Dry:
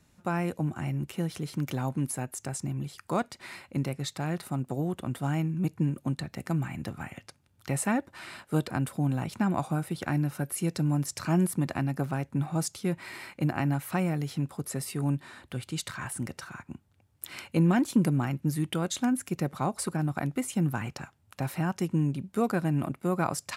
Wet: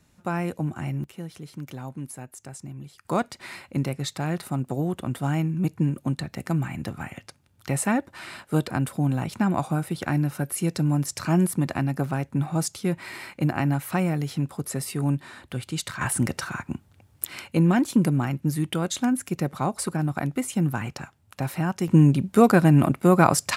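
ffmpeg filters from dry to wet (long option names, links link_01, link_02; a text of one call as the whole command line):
ffmpeg -i in.wav -af "asetnsamples=nb_out_samples=441:pad=0,asendcmd='1.04 volume volume -5.5dB;3.05 volume volume 4dB;16.01 volume volume 10.5dB;17.25 volume volume 3.5dB;21.88 volume volume 11dB',volume=2dB" out.wav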